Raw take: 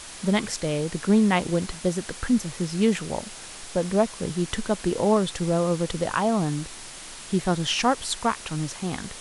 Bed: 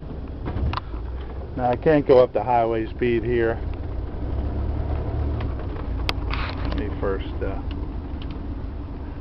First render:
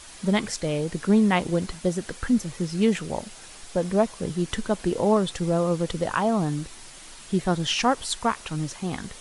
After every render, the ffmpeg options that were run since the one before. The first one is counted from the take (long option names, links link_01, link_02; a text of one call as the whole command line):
ffmpeg -i in.wav -af "afftdn=noise_reduction=6:noise_floor=-41" out.wav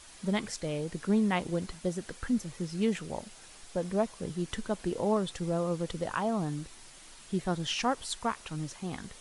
ffmpeg -i in.wav -af "volume=-7.5dB" out.wav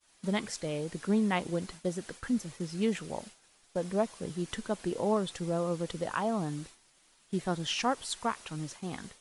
ffmpeg -i in.wav -af "lowshelf=frequency=76:gain=-10,agate=range=-33dB:threshold=-43dB:ratio=3:detection=peak" out.wav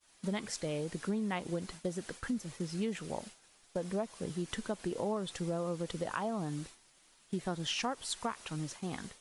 ffmpeg -i in.wav -af "acompressor=threshold=-32dB:ratio=4" out.wav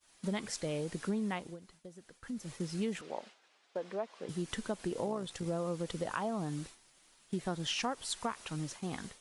ffmpeg -i in.wav -filter_complex "[0:a]asettb=1/sr,asplit=3[link_01][link_02][link_03];[link_01]atrim=end=3.014[link_04];[link_02]atrim=start=3.01:end=4.29,asetpts=PTS-STARTPTS,afade=type=in:duration=0.004:curve=qsin,afade=type=out:start_time=1.276:duration=0.004:curve=qsin,highpass=380,lowpass=3800[link_05];[link_03]atrim=start=4.286[link_06];[link_04][link_05]acrossfade=duration=0.004:curve1=hsin:curve2=qsin[link_07];[link_07][link_06]acrossfade=duration=0.004:curve1=qsin:curve2=hsin,asettb=1/sr,asplit=3[link_08][link_09][link_10];[link_08]atrim=end=5.064[link_11];[link_09]atrim=start=5.06:end=5.46,asetpts=PTS-STARTPTS,afade=type=in:duration=0.004:curve=qsin,afade=type=out:start_time=0.396:duration=0.004:curve=qsin,tremolo=f=60:d=0.462[link_12];[link_10]atrim=start=5.456[link_13];[link_11][link_12]acrossfade=duration=0.004:curve1=hsin:curve2=qsin[link_14];[link_14][link_13]acrossfade=duration=0.004:curve1=qsin:curve2=hsin,asplit=3[link_15][link_16][link_17];[link_15]atrim=end=1.58,asetpts=PTS-STARTPTS,afade=type=out:start_time=1.28:duration=0.3:silence=0.188365[link_18];[link_16]atrim=start=1.58:end=2.2,asetpts=PTS-STARTPTS,volume=-14.5dB[link_19];[link_17]atrim=start=2.2,asetpts=PTS-STARTPTS,afade=type=in:duration=0.3:silence=0.188365[link_20];[link_18][link_19][link_20]concat=n=3:v=0:a=1" out.wav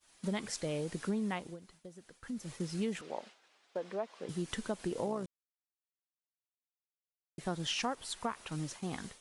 ffmpeg -i in.wav -filter_complex "[0:a]asettb=1/sr,asplit=3[link_01][link_02][link_03];[link_01]atrim=end=7.954[link_04];[link_02]atrim=start=7.95:end=8.52,asetpts=PTS-STARTPTS,afade=type=in:duration=0.004:curve=qsin,afade=type=out:start_time=0.566:duration=0.004:curve=qsin,equalizer=frequency=6600:width=0.61:gain=-4.5[link_05];[link_03]atrim=start=8.516[link_06];[link_04][link_05]acrossfade=duration=0.004:curve1=hsin:curve2=qsin[link_07];[link_07][link_06]acrossfade=duration=0.004:curve1=qsin:curve2=hsin,asplit=3[link_08][link_09][link_10];[link_08]atrim=end=5.26,asetpts=PTS-STARTPTS,afade=type=out:start_time=5.256:duration=0.004:curve=hsin[link_11];[link_09]atrim=start=5.26:end=7.38,asetpts=PTS-STARTPTS,volume=0[link_12];[link_10]atrim=start=7.38,asetpts=PTS-STARTPTS,afade=type=in:duration=0.004:curve=hsin[link_13];[link_11][link_12][link_13]concat=n=3:v=0:a=1" out.wav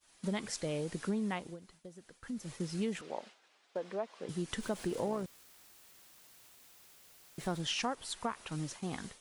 ffmpeg -i in.wav -filter_complex "[0:a]asettb=1/sr,asplit=3[link_01][link_02][link_03];[link_01]atrim=end=4.604[link_04];[link_02]atrim=start=4.6:end=7.61,asetpts=PTS-STARTPTS,afade=type=in:duration=0.004:curve=qsin,afade=type=out:start_time=3.006:duration=0.004:curve=qsin,aeval=exprs='val(0)+0.5*0.00398*sgn(val(0))':channel_layout=same[link_05];[link_03]atrim=start=7.606[link_06];[link_04][link_05]acrossfade=duration=0.004:curve1=hsin:curve2=qsin[link_07];[link_07][link_06]acrossfade=duration=0.004:curve1=qsin:curve2=hsin" out.wav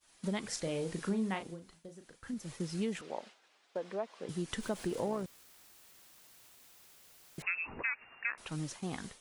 ffmpeg -i in.wav -filter_complex "[0:a]asettb=1/sr,asplit=3[link_01][link_02][link_03];[link_01]atrim=end=0.484[link_04];[link_02]atrim=start=0.48:end=2.34,asetpts=PTS-STARTPTS,afade=type=in:duration=0.004:curve=qsin,afade=type=out:start_time=1.856:duration=0.004:curve=qsin,asplit=2[link_05][link_06];[link_06]adelay=36,volume=-8dB[link_07];[link_05][link_07]amix=inputs=2:normalize=0,atrim=end_sample=82026[link_08];[link_03]atrim=start=2.336[link_09];[link_04][link_08]acrossfade=duration=0.004:curve1=hsin:curve2=qsin[link_10];[link_10][link_09]acrossfade=duration=0.004:curve1=qsin:curve2=hsin,asettb=1/sr,asplit=3[link_11][link_12][link_13];[link_11]atrim=end=7.424[link_14];[link_12]atrim=start=7.42:end=8.38,asetpts=PTS-STARTPTS,afade=type=in:duration=0.004:curve=qsin,afade=type=out:start_time=0.956:duration=0.004:curve=qsin,lowpass=frequency=2400:width_type=q:width=0.5098,lowpass=frequency=2400:width_type=q:width=0.6013,lowpass=frequency=2400:width_type=q:width=0.9,lowpass=frequency=2400:width_type=q:width=2.563,afreqshift=-2800[link_15];[link_13]atrim=start=8.376[link_16];[link_14][link_15]acrossfade=duration=0.004:curve1=hsin:curve2=qsin[link_17];[link_17][link_16]acrossfade=duration=0.004:curve1=qsin:curve2=hsin" out.wav